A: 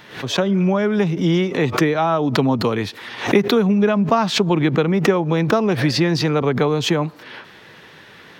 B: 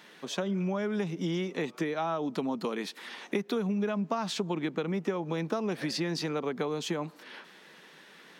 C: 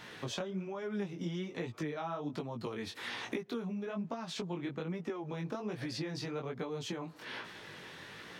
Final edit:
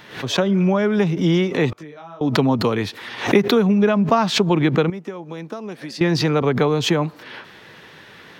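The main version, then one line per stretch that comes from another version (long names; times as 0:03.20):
A
0:01.73–0:02.21: punch in from C
0:04.90–0:06.01: punch in from B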